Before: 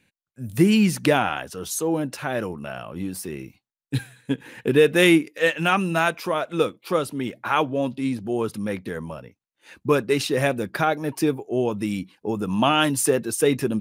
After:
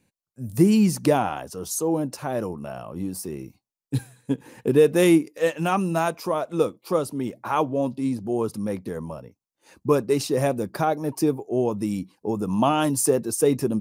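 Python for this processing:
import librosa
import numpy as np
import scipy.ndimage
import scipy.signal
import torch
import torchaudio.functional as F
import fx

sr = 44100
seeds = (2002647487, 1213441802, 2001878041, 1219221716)

y = fx.band_shelf(x, sr, hz=2300.0, db=-9.5, octaves=1.7)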